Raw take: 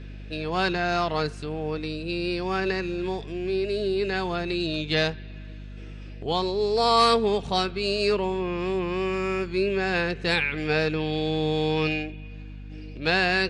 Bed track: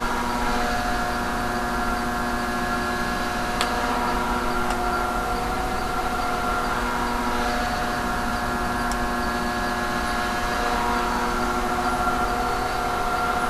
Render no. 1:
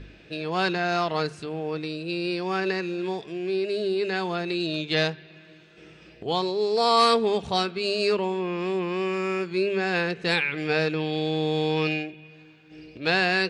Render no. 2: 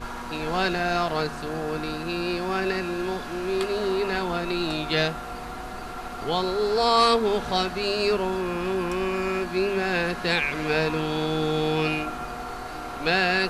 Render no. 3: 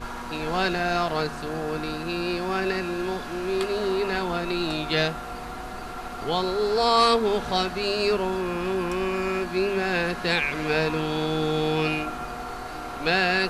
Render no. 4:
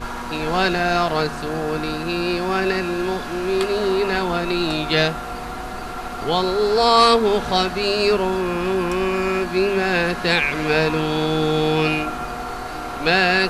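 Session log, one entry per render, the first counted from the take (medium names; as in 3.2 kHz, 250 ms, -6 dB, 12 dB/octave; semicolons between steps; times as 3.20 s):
de-hum 50 Hz, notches 5
add bed track -10.5 dB
no audible change
trim +5.5 dB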